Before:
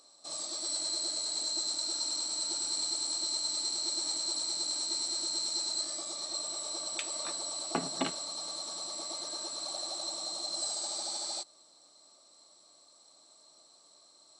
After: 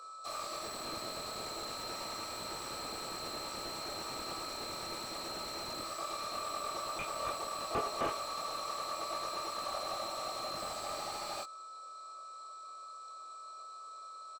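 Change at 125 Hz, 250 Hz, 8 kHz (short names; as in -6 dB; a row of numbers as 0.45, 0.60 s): +3.0, -3.0, -12.5 dB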